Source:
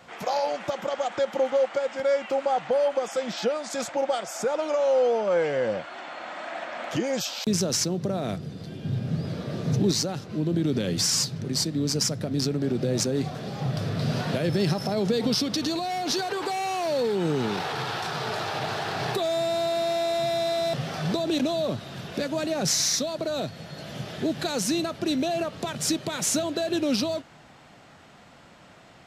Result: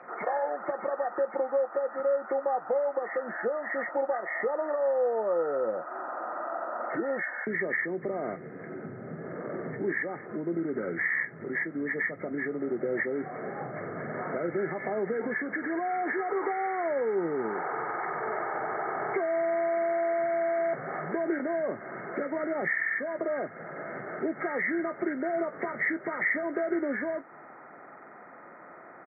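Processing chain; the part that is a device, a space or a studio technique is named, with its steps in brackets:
hearing aid with frequency lowering (hearing-aid frequency compression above 1,200 Hz 4 to 1; downward compressor 2 to 1, threshold −36 dBFS, peak gain reduction 12.5 dB; loudspeaker in its box 330–6,200 Hz, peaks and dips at 370 Hz +5 dB, 1,600 Hz −9 dB, 2,500 Hz +10 dB)
double-tracking delay 18 ms −13 dB
level +4 dB

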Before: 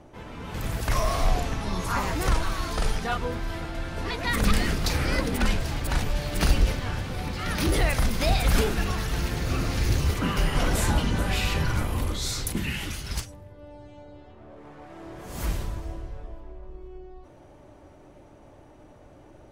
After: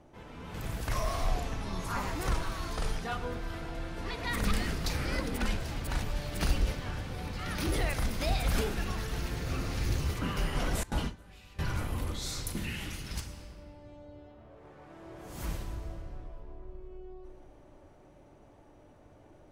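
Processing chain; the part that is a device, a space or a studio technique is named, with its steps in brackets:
compressed reverb return (on a send at −5 dB: convolution reverb RT60 2.2 s, pre-delay 54 ms + downward compressor, threshold −27 dBFS, peak gain reduction 12.5 dB)
0:10.83–0:11.59: on the sum: noise gate with hold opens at −12 dBFS
level −7.5 dB

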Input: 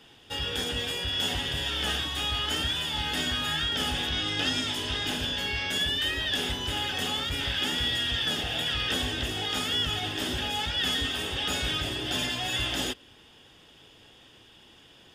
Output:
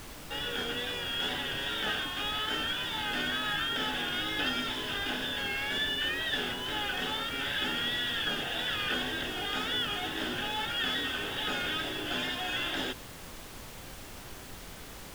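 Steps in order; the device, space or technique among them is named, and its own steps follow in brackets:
horn gramophone (band-pass filter 200–3,400 Hz; parametric band 1,500 Hz +7 dB 0.28 octaves; tape wow and flutter; pink noise bed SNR 11 dB)
level −2 dB

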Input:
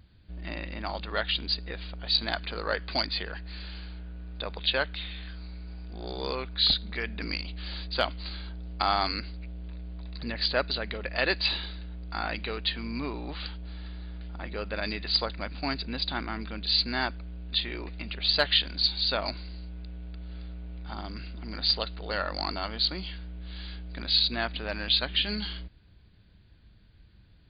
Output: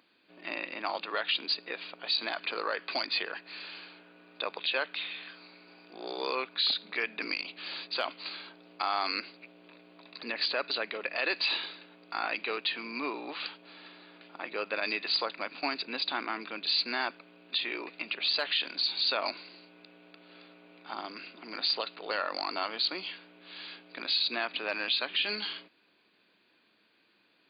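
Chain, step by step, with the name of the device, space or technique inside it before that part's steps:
laptop speaker (high-pass filter 290 Hz 24 dB per octave; parametric band 1,100 Hz +4.5 dB 0.56 octaves; parametric band 2,500 Hz +8 dB 0.25 octaves; brickwall limiter −19 dBFS, peak gain reduction 10 dB)

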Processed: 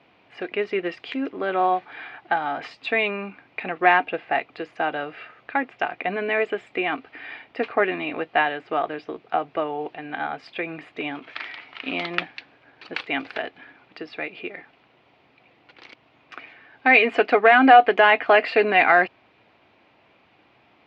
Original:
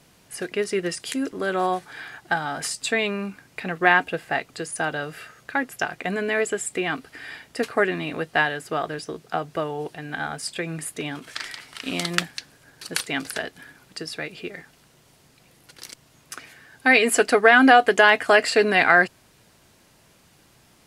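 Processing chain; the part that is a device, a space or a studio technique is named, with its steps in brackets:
overdrive pedal into a guitar cabinet (mid-hump overdrive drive 7 dB, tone 1,800 Hz, clips at −1.5 dBFS; loudspeaker in its box 83–3,700 Hz, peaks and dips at 160 Hz −7 dB, 300 Hz +4 dB, 750 Hz +4 dB, 1,600 Hz −4 dB, 2,400 Hz +6 dB)

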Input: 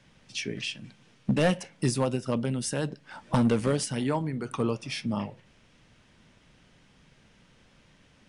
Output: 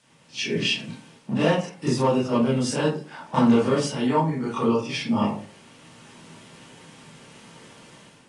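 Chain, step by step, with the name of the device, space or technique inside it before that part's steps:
filmed off a television (band-pass filter 170–7,900 Hz; parametric band 860 Hz +5 dB 0.29 octaves; convolution reverb RT60 0.40 s, pre-delay 21 ms, DRR −8.5 dB; white noise bed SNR 35 dB; automatic gain control gain up to 10 dB; level −7.5 dB; AAC 32 kbit/s 22,050 Hz)

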